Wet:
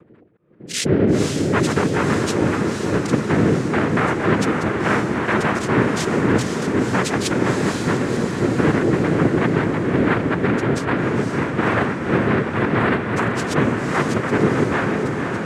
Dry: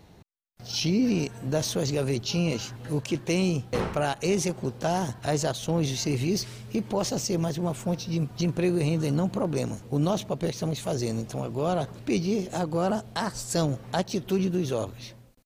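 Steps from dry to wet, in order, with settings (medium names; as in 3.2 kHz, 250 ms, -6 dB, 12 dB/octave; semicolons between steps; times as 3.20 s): chunks repeated in reverse 181 ms, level -6.5 dB; spectral gate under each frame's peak -10 dB strong; noise-vocoded speech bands 3; on a send: echo that smears into a reverb 515 ms, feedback 64%, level -4.5 dB; on the sum: trim +7 dB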